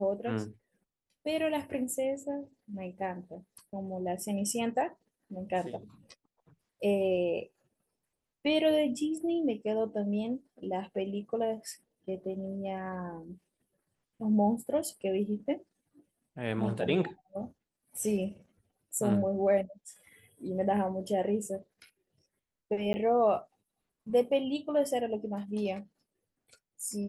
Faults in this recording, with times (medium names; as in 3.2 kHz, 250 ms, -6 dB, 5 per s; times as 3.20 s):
22.93–22.94 s: dropout 10 ms